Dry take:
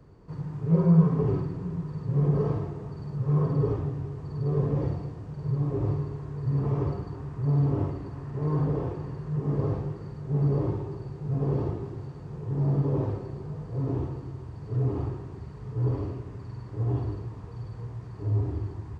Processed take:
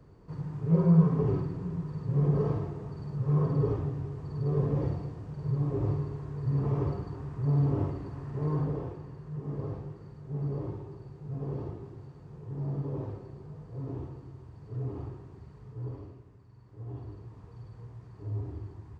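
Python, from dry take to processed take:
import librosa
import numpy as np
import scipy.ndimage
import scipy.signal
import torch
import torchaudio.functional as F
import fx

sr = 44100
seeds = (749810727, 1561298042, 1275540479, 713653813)

y = fx.gain(x, sr, db=fx.line((8.42, -2.0), (9.05, -8.5), (15.56, -8.5), (16.47, -17.5), (17.4, -8.5)))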